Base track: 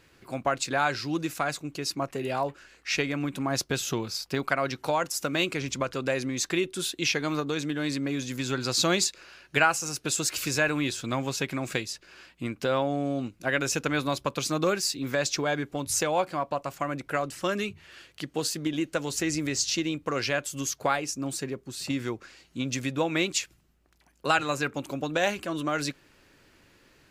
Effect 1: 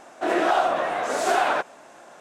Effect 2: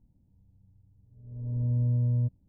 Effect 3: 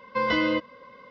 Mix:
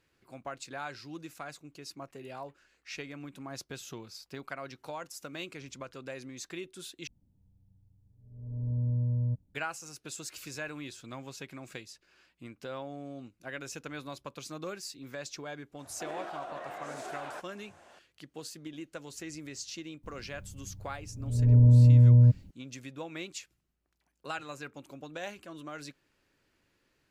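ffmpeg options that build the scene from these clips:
-filter_complex "[2:a]asplit=2[a][b];[0:a]volume=-14dB[c];[1:a]acompressor=threshold=-27dB:ratio=6:attack=3.2:release=140:knee=1:detection=peak[d];[b]alimiter=level_in=25.5dB:limit=-1dB:release=50:level=0:latency=1[e];[c]asplit=2[f][g];[f]atrim=end=7.074[h];[a]atrim=end=2.48,asetpts=PTS-STARTPTS,volume=-3.5dB[i];[g]atrim=start=9.546[j];[d]atrim=end=2.2,asetpts=PTS-STARTPTS,volume=-11dB,afade=t=in:d=0.004:c=hsin,afade=t=out:st=2.196:d=0.004:c=hsin,adelay=15790[k];[e]atrim=end=2.48,asetpts=PTS-STARTPTS,volume=-12dB,afade=t=in:d=0.004:c=hsin,afade=t=out:st=2.476:d=0.004:c=hsin,adelay=20030[l];[h][i]acrossfade=d=0.004:c1=hsin:c2=hsin[m];[m][j]acrossfade=d=0.004:c1=hsin:c2=hsin[n];[n][k][l]amix=inputs=3:normalize=0"

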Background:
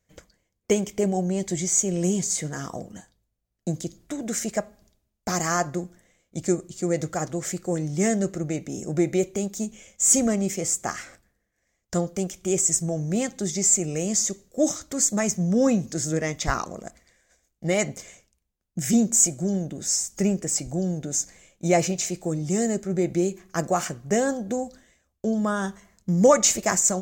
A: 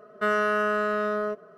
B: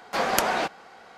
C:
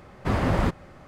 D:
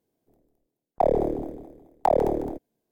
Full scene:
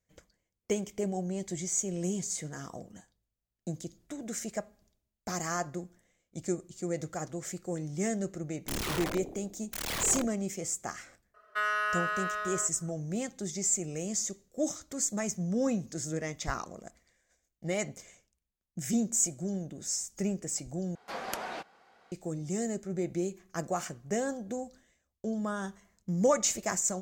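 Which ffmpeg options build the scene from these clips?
-filter_complex "[0:a]volume=-9dB[a];[4:a]aeval=exprs='(mod(22.4*val(0)+1,2)-1)/22.4':c=same[b];[1:a]highpass=1.3k[c];[a]asplit=2[d][e];[d]atrim=end=20.954[f];[2:a]atrim=end=1.17,asetpts=PTS-STARTPTS,volume=-13.5dB[g];[e]atrim=start=22.116[h];[b]atrim=end=2.91,asetpts=PTS-STARTPTS,volume=-3dB,afade=t=in:d=0.004:c=hsin,afade=t=out:st=2.906:d=0.004:c=hsin,adelay=7680[i];[c]atrim=end=1.57,asetpts=PTS-STARTPTS,volume=-1dB,afade=t=in:d=0.004:c=hsin,afade=t=out:st=1.566:d=0.004:c=hsin,adelay=11340[j];[f][g]acrossfade=d=0.004:c1=hsin:c2=hsin[k];[k][h]acrossfade=d=0.004:c1=hsin:c2=hsin[l];[l][i][j]amix=inputs=3:normalize=0"

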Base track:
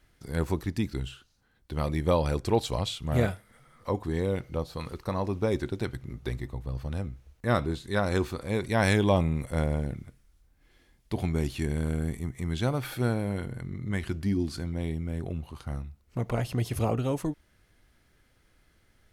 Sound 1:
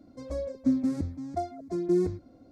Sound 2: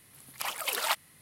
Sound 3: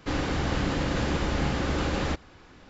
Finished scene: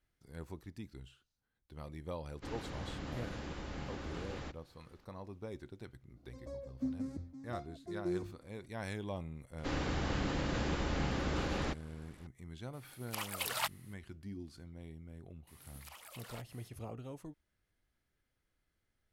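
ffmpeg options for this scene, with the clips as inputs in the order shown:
-filter_complex "[3:a]asplit=2[a][b];[2:a]asplit=2[c][d];[0:a]volume=-18dB[e];[b]aresample=32000,aresample=44100[f];[d]acompressor=threshold=-46dB:ratio=6:attack=3.2:release=140:knee=1:detection=peak[g];[a]atrim=end=2.69,asetpts=PTS-STARTPTS,volume=-16.5dB,afade=t=in:d=0.004:c=hsin,afade=t=out:st=2.686:d=0.004:c=hsin,adelay=2360[h];[1:a]atrim=end=2.51,asetpts=PTS-STARTPTS,volume=-12.5dB,afade=t=in:d=0.004:c=hsin,afade=t=out:st=2.506:d=0.004:c=hsin,adelay=6160[i];[f]atrim=end=2.69,asetpts=PTS-STARTPTS,volume=-8dB,afade=t=in:d=0.004:c=hsin,afade=t=out:st=2.686:d=0.004:c=hsin,adelay=9580[j];[c]atrim=end=1.21,asetpts=PTS-STARTPTS,volume=-6.5dB,afade=t=in:d=0.004:c=hsin,afade=t=out:st=1.206:d=0.004:c=hsin,adelay=12730[k];[g]atrim=end=1.21,asetpts=PTS-STARTPTS,volume=-4.5dB,afade=t=in:d=0.004:c=hsin,afade=t=out:st=1.206:d=0.004:c=hsin,adelay=15470[l];[e][h][i][j][k][l]amix=inputs=6:normalize=0"

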